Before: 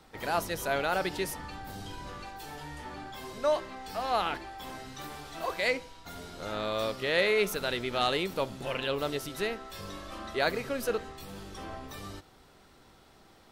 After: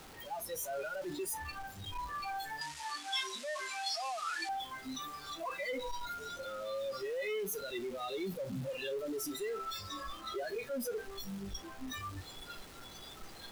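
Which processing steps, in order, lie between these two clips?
infinite clipping; spectral noise reduction 19 dB; 2.61–4.49 weighting filter ITU-R 468

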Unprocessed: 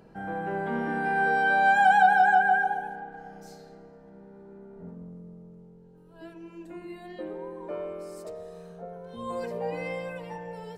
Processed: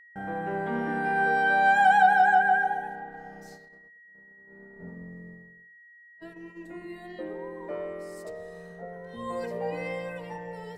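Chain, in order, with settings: gate -46 dBFS, range -44 dB; whine 1900 Hz -51 dBFS

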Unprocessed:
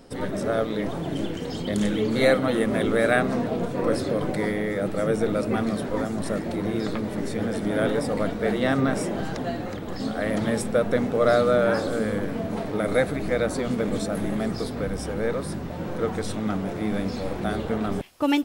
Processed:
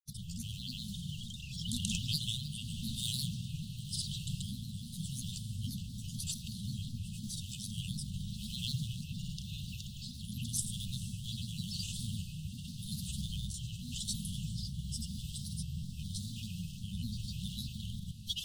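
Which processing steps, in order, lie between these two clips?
passive tone stack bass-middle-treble 5-5-5; in parallel at -9.5 dB: sample-rate reducer 2800 Hz; on the sum: brick-wall FIR band-stop 200–2900 Hz; grains, pitch spread up and down by 3 st; on a send: diffused feedback echo 0.482 s, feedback 75%, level -15 dB; on the sum: rotary speaker horn 0.9 Hz; gain +9.5 dB

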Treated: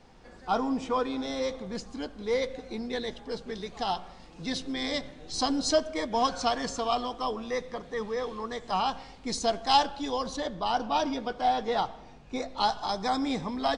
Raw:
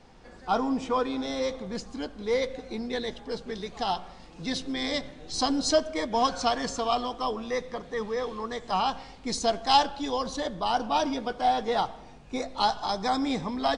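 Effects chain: 10.37–12.65 LPF 7300 Hz 12 dB/oct; gain -1.5 dB

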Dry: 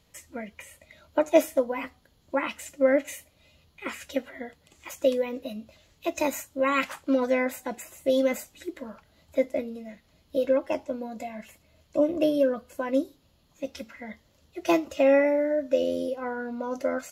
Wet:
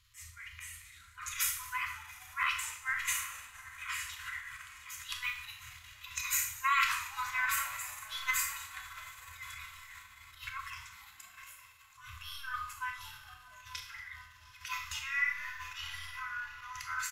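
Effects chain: 10.91–11.97 differentiator; diffused feedback echo 0.794 s, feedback 57%, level -14.5 dB; transient shaper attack -12 dB, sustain +8 dB; FFT band-reject 120–1000 Hz; frequency-shifting echo 0.233 s, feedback 51%, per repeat -130 Hz, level -20 dB; Schroeder reverb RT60 0.56 s, combs from 25 ms, DRR 4 dB; gain -2 dB

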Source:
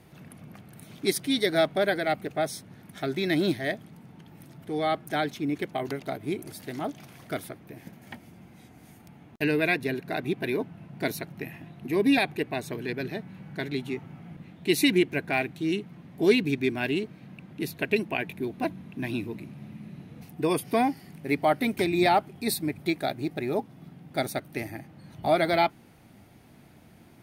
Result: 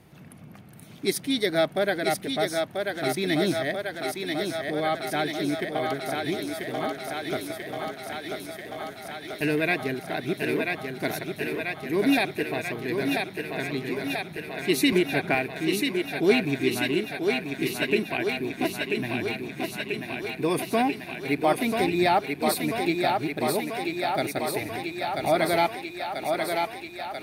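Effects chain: on a send: thinning echo 0.988 s, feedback 79%, high-pass 260 Hz, level -3.5 dB; 14.92–15.35 on the sum: three-band squash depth 100%

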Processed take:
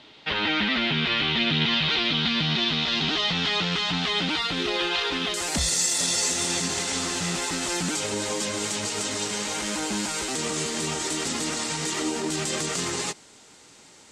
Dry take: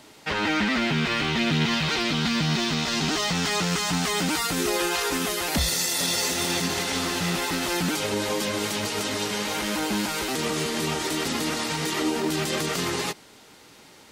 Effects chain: synth low-pass 3500 Hz, resonance Q 3, from 5.34 s 7800 Hz; gain -3 dB

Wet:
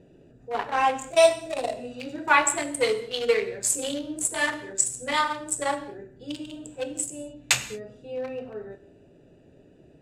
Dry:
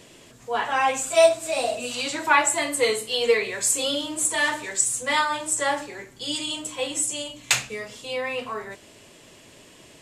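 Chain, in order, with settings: Wiener smoothing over 41 samples; non-linear reverb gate 0.25 s falling, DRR 9 dB

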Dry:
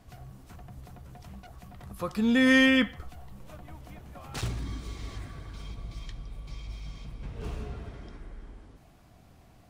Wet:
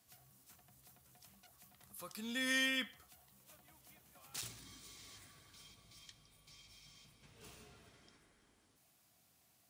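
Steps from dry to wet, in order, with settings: HPF 110 Hz 12 dB/oct; pre-emphasis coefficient 0.9; gain -1 dB

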